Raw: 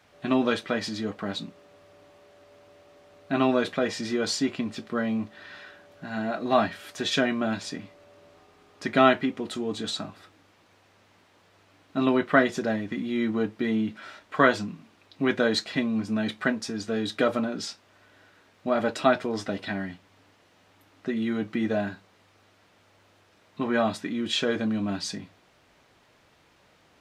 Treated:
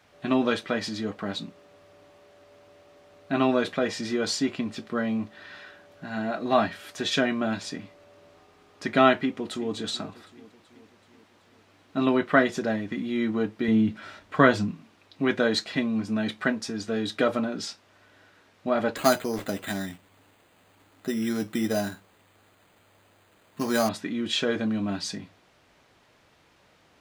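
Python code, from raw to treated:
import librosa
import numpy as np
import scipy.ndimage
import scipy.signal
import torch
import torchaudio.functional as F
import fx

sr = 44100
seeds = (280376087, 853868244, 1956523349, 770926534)

y = fx.echo_throw(x, sr, start_s=9.17, length_s=0.58, ms=380, feedback_pct=60, wet_db=-17.0)
y = fx.low_shelf(y, sr, hz=200.0, db=11.0, at=(13.68, 14.71))
y = fx.resample_bad(y, sr, factor=8, down='none', up='hold', at=(18.96, 23.89))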